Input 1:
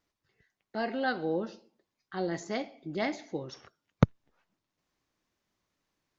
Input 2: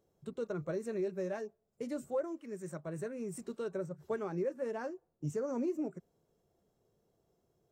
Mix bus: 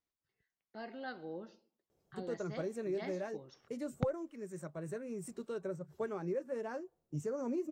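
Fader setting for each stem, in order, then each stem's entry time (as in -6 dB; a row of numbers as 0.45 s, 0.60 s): -13.5 dB, -2.0 dB; 0.00 s, 1.90 s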